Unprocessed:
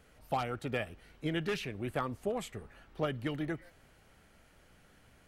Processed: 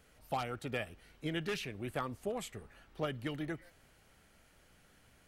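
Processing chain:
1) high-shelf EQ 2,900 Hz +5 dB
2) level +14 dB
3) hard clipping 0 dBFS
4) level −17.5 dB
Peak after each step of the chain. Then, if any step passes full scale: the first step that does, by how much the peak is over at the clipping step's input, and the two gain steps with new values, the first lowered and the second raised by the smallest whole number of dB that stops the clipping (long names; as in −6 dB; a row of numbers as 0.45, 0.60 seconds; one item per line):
−18.5, −4.5, −4.5, −22.0 dBFS
no step passes full scale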